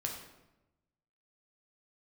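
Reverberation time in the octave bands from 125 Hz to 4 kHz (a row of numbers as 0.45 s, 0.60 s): 1.3 s, 1.2 s, 1.0 s, 0.90 s, 0.80 s, 0.65 s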